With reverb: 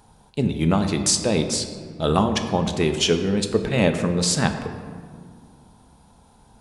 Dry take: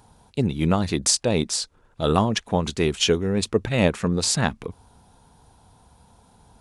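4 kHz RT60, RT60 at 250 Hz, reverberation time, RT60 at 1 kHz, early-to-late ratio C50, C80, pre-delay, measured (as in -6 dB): 1.0 s, 2.9 s, 2.0 s, 1.8 s, 8.0 dB, 9.5 dB, 3 ms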